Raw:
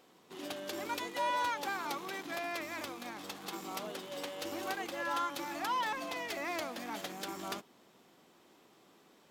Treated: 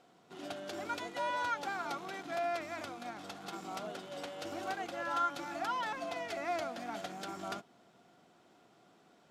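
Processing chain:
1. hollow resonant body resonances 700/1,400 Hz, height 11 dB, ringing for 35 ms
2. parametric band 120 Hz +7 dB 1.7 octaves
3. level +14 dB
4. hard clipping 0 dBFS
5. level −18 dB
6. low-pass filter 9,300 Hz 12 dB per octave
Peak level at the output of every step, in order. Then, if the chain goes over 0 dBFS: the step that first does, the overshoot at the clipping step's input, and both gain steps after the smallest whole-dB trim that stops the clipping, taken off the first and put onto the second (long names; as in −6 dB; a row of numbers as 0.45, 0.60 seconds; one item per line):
−19.5, −19.5, −5.5, −5.5, −23.5, −23.5 dBFS
no step passes full scale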